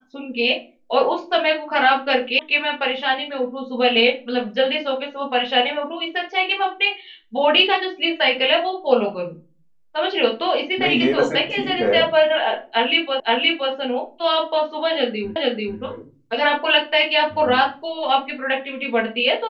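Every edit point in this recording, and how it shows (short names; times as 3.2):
2.39 sound cut off
13.2 repeat of the last 0.52 s
15.36 repeat of the last 0.44 s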